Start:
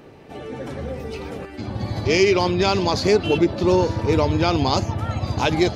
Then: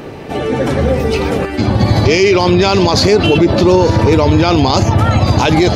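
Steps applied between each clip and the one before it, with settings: maximiser +17.5 dB; gain -1 dB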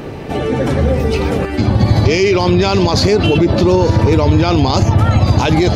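low shelf 170 Hz +6 dB; in parallel at -1 dB: compressor, threshold -16 dBFS, peak gain reduction 13 dB; on the sum: gain -5.5 dB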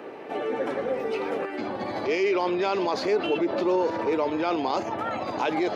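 HPF 210 Hz 12 dB/oct; three-band isolator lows -18 dB, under 290 Hz, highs -13 dB, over 2800 Hz; gain -8.5 dB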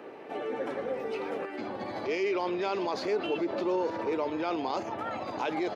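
echo 0.417 s -21 dB; gain -5.5 dB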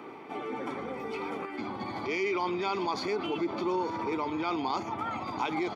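comb 0.9 ms, depth 65%; reverse; upward compressor, threshold -39 dBFS; reverse

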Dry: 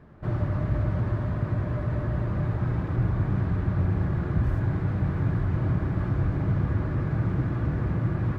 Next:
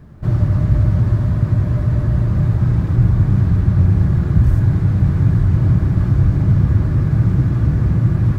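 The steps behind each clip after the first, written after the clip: tone controls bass +10 dB, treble +14 dB; gain +2.5 dB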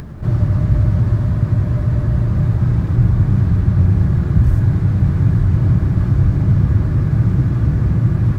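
upward compressor, threshold -22 dBFS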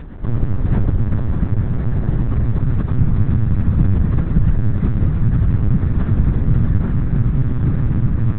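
LPC vocoder at 8 kHz pitch kept; gain -1 dB

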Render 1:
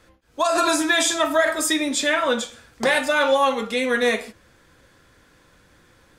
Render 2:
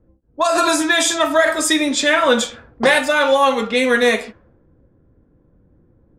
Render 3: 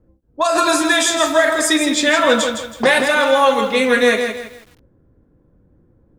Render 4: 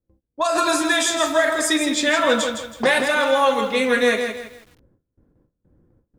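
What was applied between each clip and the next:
vocal rider within 5 dB 0.5 s; low-pass opened by the level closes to 330 Hz, open at -18 dBFS; gain +5 dB
lo-fi delay 0.162 s, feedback 35%, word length 7-bit, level -7 dB
gate with hold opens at -45 dBFS; gain -4 dB

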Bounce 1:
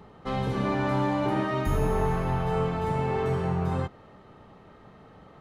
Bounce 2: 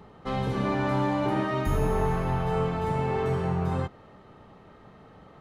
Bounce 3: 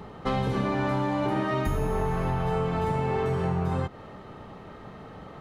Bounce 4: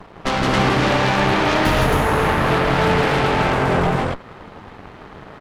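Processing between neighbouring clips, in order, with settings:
nothing audible
compressor, threshold -31 dBFS, peak gain reduction 10 dB; gain +7.5 dB
flange 0.44 Hz, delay 2 ms, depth 10 ms, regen -81%; added harmonics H 7 -22 dB, 8 -9 dB, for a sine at -19.5 dBFS; loudspeakers at several distances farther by 56 m -2 dB, 93 m -1 dB; gain +8 dB

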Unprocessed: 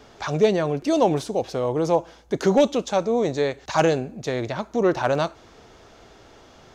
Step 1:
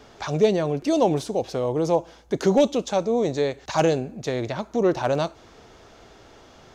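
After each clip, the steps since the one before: dynamic EQ 1500 Hz, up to -5 dB, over -34 dBFS, Q 1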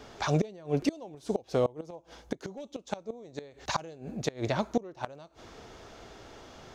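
flipped gate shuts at -15 dBFS, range -25 dB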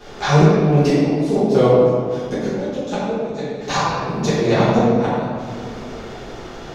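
reverb RT60 2.2 s, pre-delay 5 ms, DRR -13 dB; gain +1.5 dB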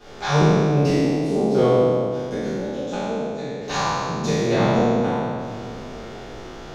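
spectral trails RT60 1.73 s; gain -6.5 dB

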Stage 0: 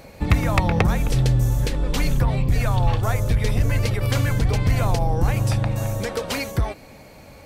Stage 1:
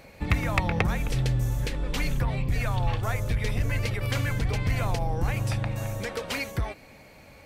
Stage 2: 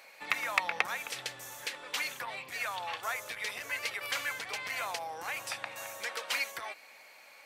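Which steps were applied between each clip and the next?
bell 2200 Hz +5.5 dB 1.3 oct; gain -7 dB
HPF 950 Hz 12 dB/oct

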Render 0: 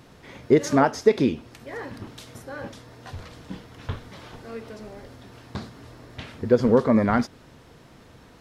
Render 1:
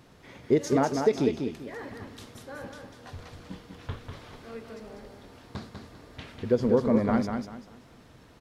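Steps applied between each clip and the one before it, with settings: dynamic EQ 1500 Hz, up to -5 dB, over -35 dBFS, Q 1; on a send: feedback echo 0.196 s, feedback 28%, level -5.5 dB; on the sum: gain -5 dB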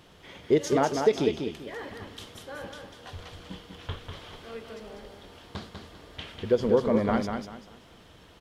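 thirty-one-band EQ 125 Hz -7 dB, 250 Hz -7 dB, 3150 Hz +9 dB; gain +1.5 dB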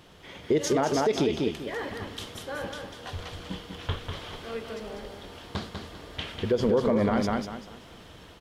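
AGC gain up to 3.5 dB; limiter -17 dBFS, peak gain reduction 11 dB; gain +1.5 dB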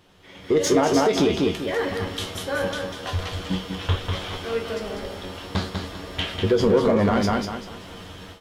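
AGC gain up to 12 dB; in parallel at -4 dB: overloaded stage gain 16.5 dB; on the sum: resonator 93 Hz, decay 0.19 s, harmonics all, mix 80%; gain -2 dB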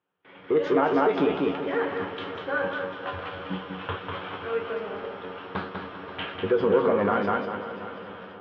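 speaker cabinet 220–2500 Hz, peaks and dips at 230 Hz -7 dB, 350 Hz -4 dB, 640 Hz -5 dB, 1400 Hz +3 dB, 2000 Hz -6 dB; gate with hold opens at -45 dBFS; multi-head echo 0.266 s, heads first and second, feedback 52%, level -16 dB

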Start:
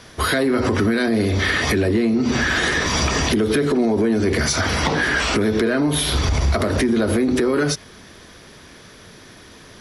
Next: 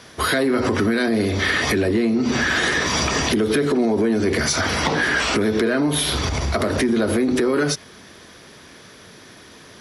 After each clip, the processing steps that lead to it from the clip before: HPF 120 Hz 6 dB/oct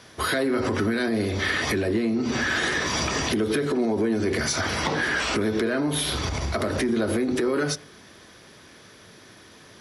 reverb RT60 0.60 s, pre-delay 4 ms, DRR 14 dB; gain -5 dB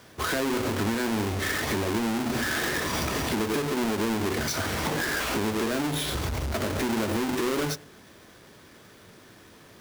half-waves squared off; gain -7 dB

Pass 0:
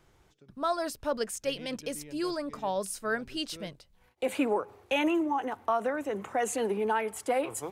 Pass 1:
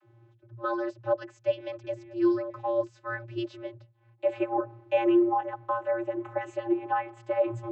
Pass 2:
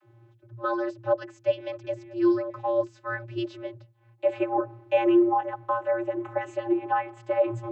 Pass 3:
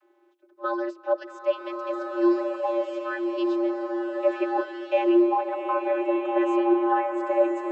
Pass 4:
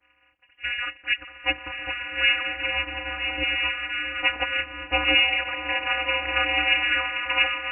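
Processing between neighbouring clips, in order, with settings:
tone controls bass -2 dB, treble -13 dB; vocoder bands 32, square 116 Hz; gain +3.5 dB
de-hum 84.55 Hz, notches 5; gain +2.5 dB
elliptic high-pass 330 Hz, stop band 60 dB; bloom reverb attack 1.45 s, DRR 1.5 dB
spectral limiter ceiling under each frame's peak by 27 dB; inverted band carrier 3200 Hz

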